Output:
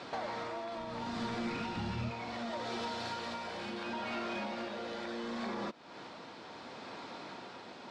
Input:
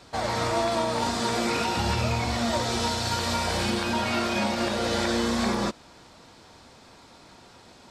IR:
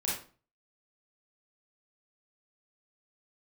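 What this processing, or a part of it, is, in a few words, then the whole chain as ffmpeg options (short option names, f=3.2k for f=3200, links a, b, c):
AM radio: -filter_complex "[0:a]highpass=200,lowpass=3.6k,acompressor=threshold=-43dB:ratio=5,asoftclip=type=tanh:threshold=-36.5dB,tremolo=f=0.71:d=0.33,asplit=3[a][b][c];[a]afade=t=out:st=0.77:d=0.02[d];[b]asubboost=boost=10:cutoff=200,afade=t=in:st=0.77:d=0.02,afade=t=out:st=2.09:d=0.02[e];[c]afade=t=in:st=2.09:d=0.02[f];[d][e][f]amix=inputs=3:normalize=0,volume=7dB"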